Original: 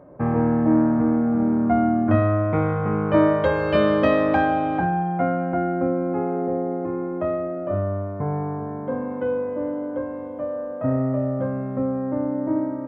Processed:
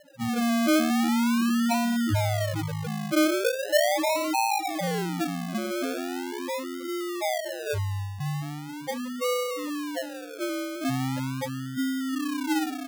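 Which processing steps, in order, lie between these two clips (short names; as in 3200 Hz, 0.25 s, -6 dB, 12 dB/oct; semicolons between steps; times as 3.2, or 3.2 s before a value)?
loudest bins only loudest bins 2; decimation with a swept rate 37×, swing 60% 0.4 Hz; gain -1 dB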